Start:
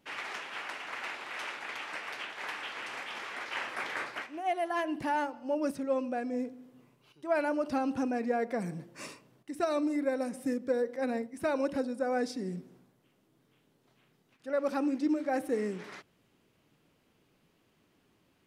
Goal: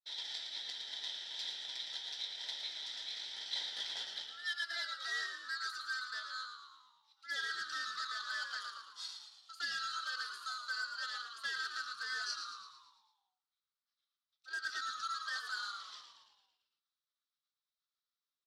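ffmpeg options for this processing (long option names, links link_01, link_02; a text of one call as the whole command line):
ffmpeg -i in.wav -filter_complex "[0:a]afftfilt=real='real(if(lt(b,960),b+48*(1-2*mod(floor(b/48),2)),b),0)':imag='imag(if(lt(b,960),b+48*(1-2*mod(floor(b/48),2)),b),0)':win_size=2048:overlap=0.75,agate=range=-33dB:threshold=-56dB:ratio=3:detection=peak,asplit=2[link_01][link_02];[link_02]acrusher=bits=4:mix=0:aa=0.5,volume=-10.5dB[link_03];[link_01][link_03]amix=inputs=2:normalize=0,bandpass=frequency=4600:width_type=q:width=4.7:csg=0,asplit=2[link_04][link_05];[link_05]asplit=7[link_06][link_07][link_08][link_09][link_10][link_11][link_12];[link_06]adelay=112,afreqshift=-67,volume=-7dB[link_13];[link_07]adelay=224,afreqshift=-134,volume=-12.4dB[link_14];[link_08]adelay=336,afreqshift=-201,volume=-17.7dB[link_15];[link_09]adelay=448,afreqshift=-268,volume=-23.1dB[link_16];[link_10]adelay=560,afreqshift=-335,volume=-28.4dB[link_17];[link_11]adelay=672,afreqshift=-402,volume=-33.8dB[link_18];[link_12]adelay=784,afreqshift=-469,volume=-39.1dB[link_19];[link_13][link_14][link_15][link_16][link_17][link_18][link_19]amix=inputs=7:normalize=0[link_20];[link_04][link_20]amix=inputs=2:normalize=0,flanger=delay=1.4:depth=9:regen=-68:speed=0.19:shape=triangular,volume=12.5dB" out.wav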